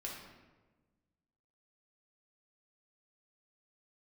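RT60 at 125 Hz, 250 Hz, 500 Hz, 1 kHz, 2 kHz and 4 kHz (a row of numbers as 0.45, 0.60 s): 1.9, 1.8, 1.4, 1.1, 1.0, 0.80 s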